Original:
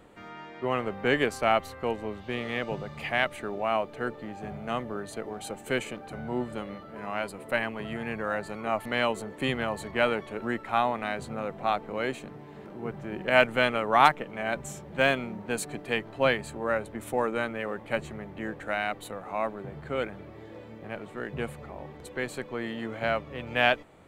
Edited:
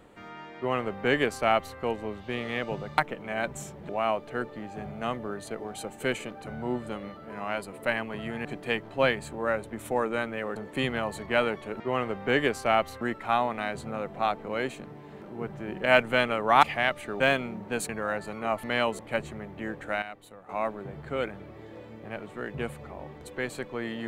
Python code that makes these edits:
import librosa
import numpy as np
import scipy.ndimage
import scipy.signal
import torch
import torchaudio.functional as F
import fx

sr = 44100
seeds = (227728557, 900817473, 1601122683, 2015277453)

y = fx.edit(x, sr, fx.duplicate(start_s=0.57, length_s=1.21, to_s=10.45),
    fx.swap(start_s=2.98, length_s=0.57, other_s=14.07, other_length_s=0.91),
    fx.swap(start_s=8.11, length_s=1.1, other_s=15.67, other_length_s=2.11),
    fx.clip_gain(start_s=18.81, length_s=0.47, db=-10.5), tone=tone)